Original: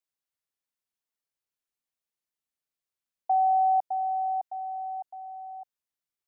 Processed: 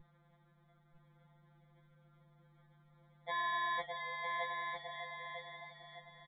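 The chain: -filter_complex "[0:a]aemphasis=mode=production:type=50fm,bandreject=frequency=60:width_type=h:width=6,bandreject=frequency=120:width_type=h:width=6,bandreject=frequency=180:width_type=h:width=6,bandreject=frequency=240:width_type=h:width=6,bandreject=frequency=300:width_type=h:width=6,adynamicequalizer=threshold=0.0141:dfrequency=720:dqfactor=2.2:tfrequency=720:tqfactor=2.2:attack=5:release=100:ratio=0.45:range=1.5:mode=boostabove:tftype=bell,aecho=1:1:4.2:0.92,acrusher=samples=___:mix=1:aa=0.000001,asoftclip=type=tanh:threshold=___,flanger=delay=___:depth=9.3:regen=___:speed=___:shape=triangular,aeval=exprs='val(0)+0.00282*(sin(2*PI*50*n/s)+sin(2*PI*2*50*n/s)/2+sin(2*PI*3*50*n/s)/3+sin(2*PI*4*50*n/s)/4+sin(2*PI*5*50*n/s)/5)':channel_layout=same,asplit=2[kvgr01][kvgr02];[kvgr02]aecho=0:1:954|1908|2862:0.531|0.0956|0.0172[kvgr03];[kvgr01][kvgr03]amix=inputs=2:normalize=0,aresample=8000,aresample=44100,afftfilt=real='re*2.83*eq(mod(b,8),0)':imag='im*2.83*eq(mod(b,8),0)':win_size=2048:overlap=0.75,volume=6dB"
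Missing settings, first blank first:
16, -25.5dB, 9.1, -62, 0.63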